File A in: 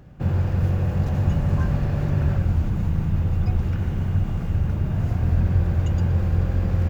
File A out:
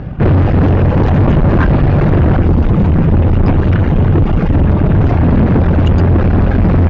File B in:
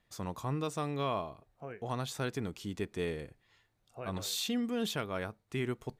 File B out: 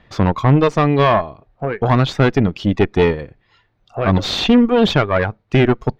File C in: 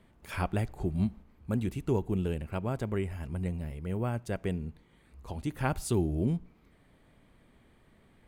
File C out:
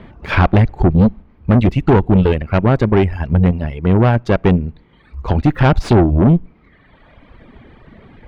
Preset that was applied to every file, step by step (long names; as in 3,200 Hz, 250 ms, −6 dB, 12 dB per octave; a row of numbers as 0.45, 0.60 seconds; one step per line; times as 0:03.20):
reverb reduction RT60 1.5 s
wave folding −21 dBFS
tube saturation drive 33 dB, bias 0.6
high-frequency loss of the air 250 metres
normalise the peak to −3 dBFS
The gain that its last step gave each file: +26.5, +27.5, +27.0 decibels